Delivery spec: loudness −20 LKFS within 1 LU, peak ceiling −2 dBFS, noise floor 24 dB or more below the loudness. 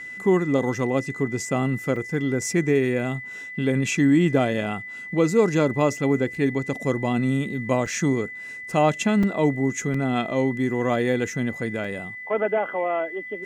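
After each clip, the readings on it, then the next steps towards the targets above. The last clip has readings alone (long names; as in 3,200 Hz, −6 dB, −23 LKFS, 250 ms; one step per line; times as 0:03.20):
number of dropouts 5; longest dropout 3.8 ms; interfering tone 2,000 Hz; level of the tone −34 dBFS; integrated loudness −23.5 LKFS; sample peak −7.0 dBFS; target loudness −20.0 LKFS
→ repair the gap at 0:01.96/0:07.86/0:09.23/0:09.94/0:11.84, 3.8 ms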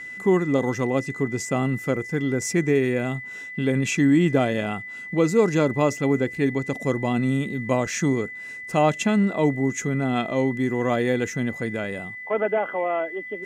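number of dropouts 0; interfering tone 2,000 Hz; level of the tone −34 dBFS
→ notch filter 2,000 Hz, Q 30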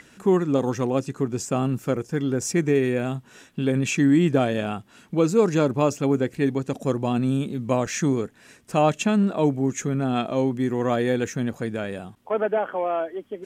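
interfering tone none found; integrated loudness −23.5 LKFS; sample peak −7.0 dBFS; target loudness −20.0 LKFS
→ level +3.5 dB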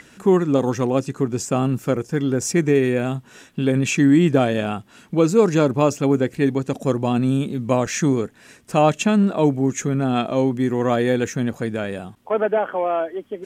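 integrated loudness −20.0 LKFS; sample peak −3.5 dBFS; background noise floor −50 dBFS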